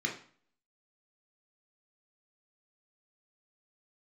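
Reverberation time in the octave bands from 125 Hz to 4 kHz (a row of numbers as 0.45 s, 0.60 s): 0.50 s, 0.50 s, 0.45 s, 0.50 s, 0.45 s, 0.40 s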